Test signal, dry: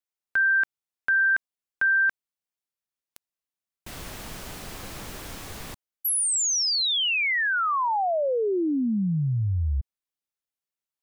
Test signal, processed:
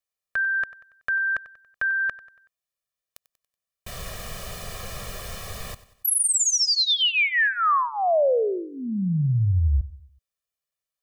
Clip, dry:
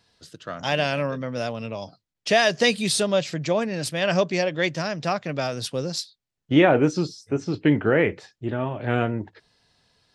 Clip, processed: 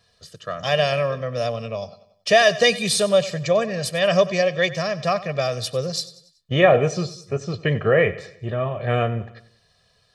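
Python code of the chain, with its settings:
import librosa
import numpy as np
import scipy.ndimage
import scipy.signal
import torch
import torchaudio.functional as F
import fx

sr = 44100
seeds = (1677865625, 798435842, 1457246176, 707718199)

y = x + 0.87 * np.pad(x, (int(1.7 * sr / 1000.0), 0))[:len(x)]
y = fx.echo_feedback(y, sr, ms=94, feedback_pct=47, wet_db=-17)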